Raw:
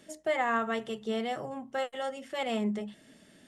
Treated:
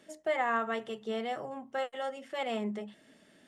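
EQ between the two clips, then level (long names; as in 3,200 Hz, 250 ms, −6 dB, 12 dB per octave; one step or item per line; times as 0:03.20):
low-shelf EQ 200 Hz −10.5 dB
high-shelf EQ 3,600 Hz −7 dB
0.0 dB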